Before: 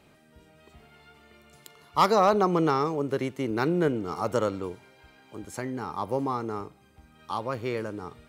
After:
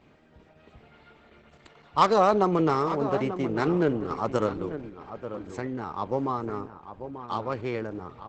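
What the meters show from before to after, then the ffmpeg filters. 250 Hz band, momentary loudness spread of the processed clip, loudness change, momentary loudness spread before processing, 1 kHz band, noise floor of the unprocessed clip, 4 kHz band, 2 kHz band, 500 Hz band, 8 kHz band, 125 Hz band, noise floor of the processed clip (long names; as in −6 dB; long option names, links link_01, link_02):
+1.0 dB, 17 LU, +0.5 dB, 16 LU, +0.5 dB, −59 dBFS, −1.5 dB, −0.5 dB, +0.5 dB, can't be measured, +0.5 dB, −58 dBFS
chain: -filter_complex "[0:a]asplit=2[link_01][link_02];[link_02]adelay=890,lowpass=frequency=2000:poles=1,volume=-10dB,asplit=2[link_03][link_04];[link_04]adelay=890,lowpass=frequency=2000:poles=1,volume=0.17[link_05];[link_01][link_03][link_05]amix=inputs=3:normalize=0,adynamicsmooth=sensitivity=4.5:basefreq=4100,volume=1dB" -ar 48000 -c:a libopus -b:a 10k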